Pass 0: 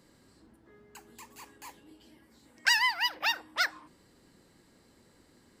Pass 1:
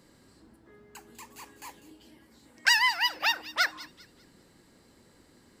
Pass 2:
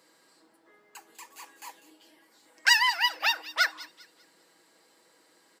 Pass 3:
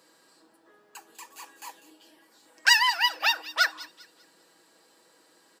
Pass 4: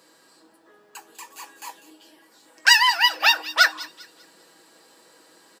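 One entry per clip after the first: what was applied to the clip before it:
feedback echo behind a high-pass 198 ms, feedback 34%, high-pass 2.7 kHz, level -14.5 dB; trim +2.5 dB
high-pass 500 Hz 12 dB/octave; comb 6.2 ms, depth 46%
band-stop 2.1 kHz, Q 10; trim +2 dB
in parallel at -1 dB: gain riding; on the sum: doubling 19 ms -12.5 dB

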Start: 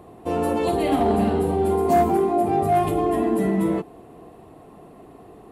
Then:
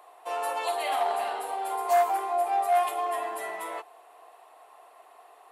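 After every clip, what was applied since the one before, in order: high-pass 720 Hz 24 dB/octave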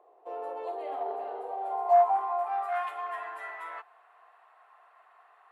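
band-pass sweep 410 Hz -> 1.5 kHz, 1.19–2.83 s; trim +2.5 dB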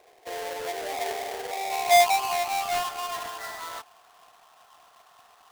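square wave that keeps the level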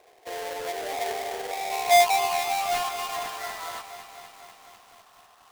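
bit-crushed delay 248 ms, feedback 80%, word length 8-bit, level -12 dB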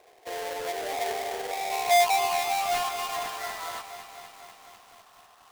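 saturation -16 dBFS, distortion -16 dB

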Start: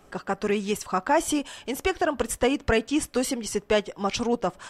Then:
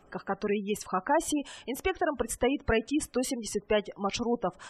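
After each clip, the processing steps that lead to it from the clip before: spectral gate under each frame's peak -25 dB strong; trim -4 dB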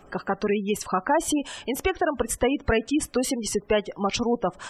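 compression 1.5:1, threshold -33 dBFS, peak gain reduction 4.5 dB; trim +8 dB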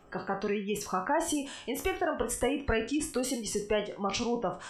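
spectral sustain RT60 0.35 s; trim -7.5 dB

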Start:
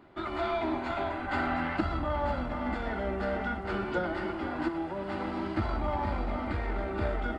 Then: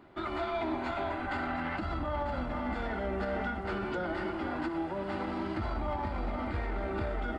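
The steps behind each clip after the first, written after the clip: peak limiter -25 dBFS, peak gain reduction 10.5 dB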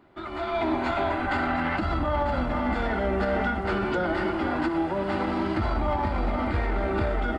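level rider gain up to 9.5 dB; trim -1.5 dB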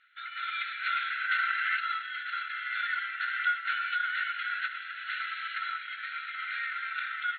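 brick-wall FIR band-pass 1.3–4.3 kHz; trim +3 dB

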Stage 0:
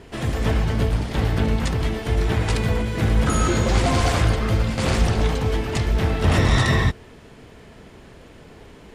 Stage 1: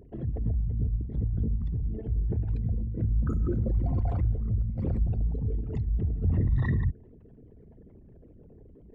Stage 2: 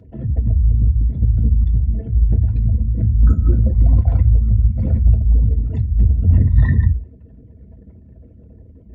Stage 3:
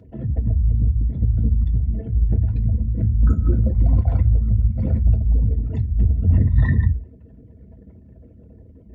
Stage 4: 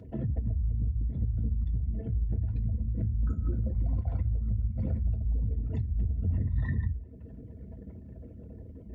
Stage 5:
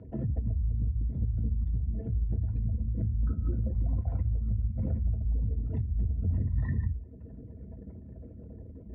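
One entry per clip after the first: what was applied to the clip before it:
resonances exaggerated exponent 3; trim -7 dB
reverberation RT60 0.10 s, pre-delay 3 ms, DRR 3 dB; trim -3 dB
bass shelf 110 Hz -5 dB
compression 3:1, threshold -30 dBFS, peak gain reduction 14.5 dB
Bessel low-pass 1.5 kHz, order 2

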